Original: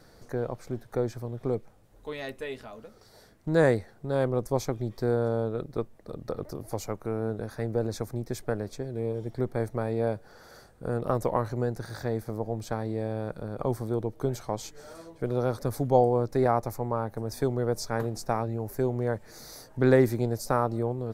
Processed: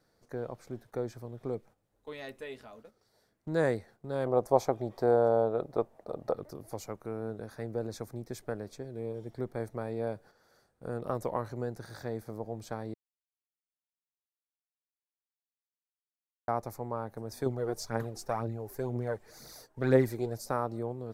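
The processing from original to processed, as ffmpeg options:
-filter_complex "[0:a]asettb=1/sr,asplit=3[a][b][c];[a]atrim=end=4.264[d];[b]atrim=start=4.26:end=6.34,asetpts=PTS-STARTPTS,afade=t=in:d=0.004:c=qsin,afade=t=out:st=2.076:d=0.004:c=qsin,equalizer=f=720:t=o:w=1.5:g=14[e];[c]atrim=start=6.336[f];[d][e]acrossfade=d=0.004:c1=hsin:c2=qsin[g];[g][f]acrossfade=d=0.004:c1=qsin:c2=hsin,asettb=1/sr,asplit=3[h][i][j];[h]atrim=end=17.464[k];[i]atrim=start=17.46:end=20.37,asetpts=PTS-STARTPTS,afade=t=in:d=0.004:c=qsin,afade=t=out:st=2.906:d=0.004:c=qsin,aphaser=in_gain=1:out_gain=1:delay=3:decay=0.5:speed=2:type=triangular[l];[j]atrim=start=20.366[m];[k][l]acrossfade=d=0.004:c1=hsin:c2=qsin[n];[n][m]acrossfade=d=0.004:c1=qsin:c2=hsin,asplit=3[o][p][q];[o]atrim=end=12.94,asetpts=PTS-STARTPTS,afade=t=out:st=12.936:d=0.004:c=hsin[r];[p]atrim=start=12.94:end=16.48,asetpts=PTS-STARTPTS,volume=0[s];[q]atrim=start=16.48,asetpts=PTS-STARTPTS,afade=t=in:d=0.004:c=hsin[t];[r][s][t]concat=n=3:v=0:a=1,agate=range=-9dB:threshold=-46dB:ratio=16:detection=peak,lowshelf=f=69:g=-9.5,volume=-6dB"

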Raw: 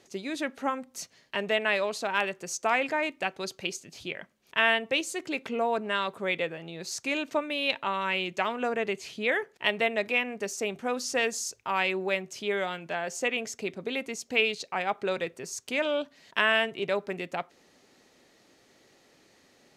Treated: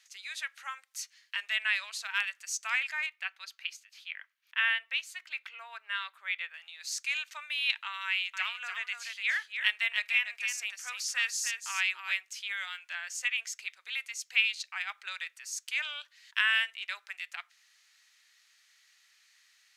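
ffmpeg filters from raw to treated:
-filter_complex "[0:a]asettb=1/sr,asplit=3[a][b][c];[a]atrim=end=3.064[d];[b]atrim=start=3.06:end=6.54,asetpts=PTS-STARTPTS,afade=t=in:d=0.004:c=qsin,afade=t=out:st=3.476:d=0.004:c=qsin,equalizer=f=7.9k:t=o:w=1.7:g=-12[e];[c]atrim=start=6.536[f];[d][e]acrossfade=d=0.004:c1=hsin:c2=qsin[g];[g][f]acrossfade=d=0.004:c1=qsin:c2=hsin,asettb=1/sr,asplit=3[h][i][j];[h]atrim=end=8.044[k];[i]atrim=start=8.04:end=12.14,asetpts=PTS-STARTPTS,afade=t=in:d=0.004:c=qsin,afade=t=out:st=4.096:d=0.004:c=qsin,aecho=1:1:294:0.473,atrim=end_sample=180810[l];[j]atrim=start=12.136[m];[k][l]acrossfade=d=0.004:c1=hsin:c2=qsin[n];[n][m]acrossfade=d=0.004:c1=qsin:c2=hsin,highpass=f=1.5k:w=0.5412,highpass=f=1.5k:w=1.3066"

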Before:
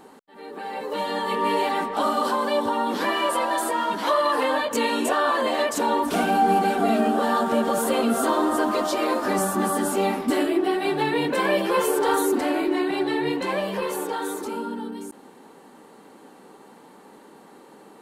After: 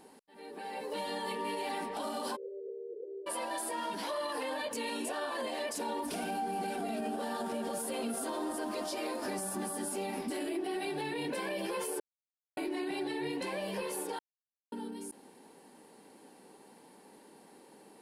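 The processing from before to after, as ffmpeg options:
-filter_complex "[0:a]asplit=3[a][b][c];[a]afade=t=out:st=2.35:d=0.02[d];[b]asuperpass=centerf=430:order=8:qfactor=3.2,afade=t=in:st=2.35:d=0.02,afade=t=out:st=3.26:d=0.02[e];[c]afade=t=in:st=3.26:d=0.02[f];[d][e][f]amix=inputs=3:normalize=0,asplit=5[g][h][i][j][k];[g]atrim=end=12,asetpts=PTS-STARTPTS,afade=t=out:st=11.996:d=0.004:c=hsin[l];[h]atrim=start=12:end=12.57,asetpts=PTS-STARTPTS,volume=0[m];[i]atrim=start=12.57:end=14.19,asetpts=PTS-STARTPTS,afade=t=in:d=0.004:c=hsin,afade=t=out:st=1.616:d=0.004:c=hsin[n];[j]atrim=start=14.19:end=14.72,asetpts=PTS-STARTPTS,volume=0[o];[k]atrim=start=14.72,asetpts=PTS-STARTPTS,afade=t=in:d=0.004:c=hsin[p];[l][m][n][o][p]concat=n=5:v=0:a=1,equalizer=f=1.25k:t=o:w=0.33:g=-9,equalizer=f=2.5k:t=o:w=0.33:g=3,equalizer=f=5k:t=o:w=0.33:g=8,equalizer=f=10k:t=o:w=0.33:g=11,alimiter=limit=-19.5dB:level=0:latency=1:release=72,volume=-8.5dB"

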